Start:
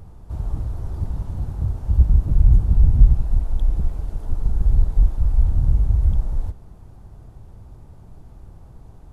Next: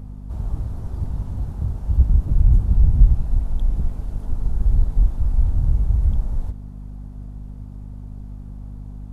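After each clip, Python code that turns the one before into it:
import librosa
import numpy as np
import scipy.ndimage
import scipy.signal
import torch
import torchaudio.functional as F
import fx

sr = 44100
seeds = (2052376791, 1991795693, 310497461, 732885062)

y = fx.add_hum(x, sr, base_hz=50, snr_db=16)
y = F.gain(torch.from_numpy(y), -1.0).numpy()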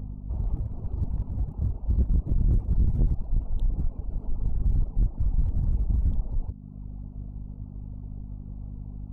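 y = fx.wiener(x, sr, points=25)
y = fx.dereverb_blind(y, sr, rt60_s=0.92)
y = 10.0 ** (-17.5 / 20.0) * np.tanh(y / 10.0 ** (-17.5 / 20.0))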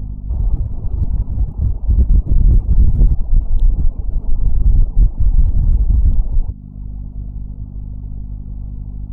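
y = fx.low_shelf(x, sr, hz=73.0, db=8.0)
y = F.gain(torch.from_numpy(y), 6.5).numpy()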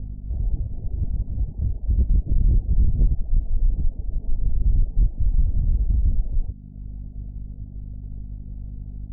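y = scipy.signal.sosfilt(scipy.signal.butter(6, 720.0, 'lowpass', fs=sr, output='sos'), x)
y = F.gain(torch.from_numpy(y), -7.5).numpy()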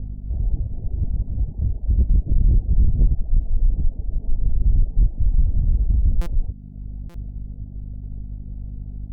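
y = fx.buffer_glitch(x, sr, at_s=(6.21, 7.09), block=256, repeats=8)
y = F.gain(torch.from_numpy(y), 2.0).numpy()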